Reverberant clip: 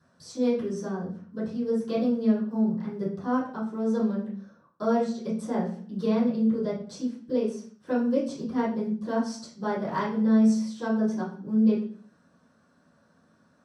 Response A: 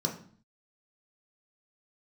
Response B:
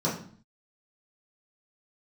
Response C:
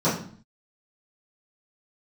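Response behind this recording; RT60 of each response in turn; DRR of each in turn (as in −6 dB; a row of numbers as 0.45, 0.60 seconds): C; 0.50, 0.50, 0.50 seconds; 0.5, −8.0, −14.0 decibels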